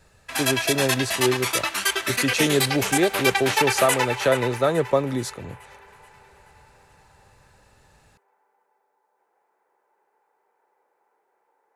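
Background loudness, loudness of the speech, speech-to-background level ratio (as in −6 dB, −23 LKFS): −23.5 LKFS, −24.0 LKFS, −0.5 dB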